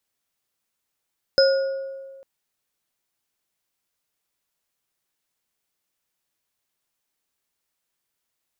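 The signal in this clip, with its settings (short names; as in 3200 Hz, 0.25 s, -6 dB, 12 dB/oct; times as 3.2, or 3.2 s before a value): sine partials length 0.85 s, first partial 541 Hz, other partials 1440/5100 Hz, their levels -10/-3.5 dB, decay 1.66 s, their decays 1.00/0.57 s, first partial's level -12.5 dB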